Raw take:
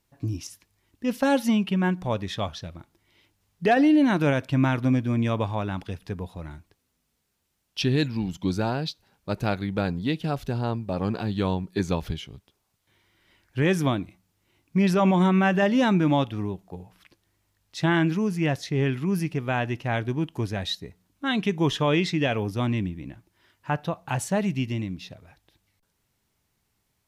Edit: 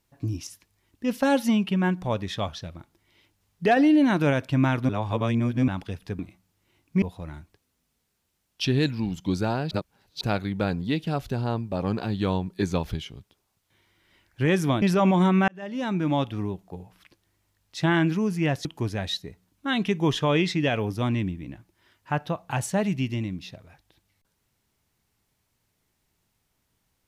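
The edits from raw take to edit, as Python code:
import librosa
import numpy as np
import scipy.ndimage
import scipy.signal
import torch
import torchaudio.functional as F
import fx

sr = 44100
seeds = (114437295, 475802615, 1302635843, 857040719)

y = fx.edit(x, sr, fx.reverse_span(start_s=4.89, length_s=0.79),
    fx.reverse_span(start_s=8.88, length_s=0.5),
    fx.move(start_s=13.99, length_s=0.83, to_s=6.19),
    fx.fade_in_span(start_s=15.48, length_s=0.88),
    fx.cut(start_s=18.65, length_s=1.58), tone=tone)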